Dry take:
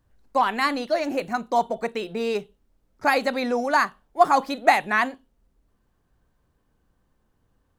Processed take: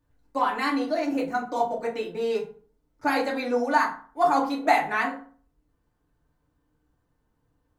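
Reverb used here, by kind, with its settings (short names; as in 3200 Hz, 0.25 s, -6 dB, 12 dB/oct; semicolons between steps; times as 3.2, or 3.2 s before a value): FDN reverb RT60 0.45 s, low-frequency decay 1.1×, high-frequency decay 0.55×, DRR -3 dB; gain -8 dB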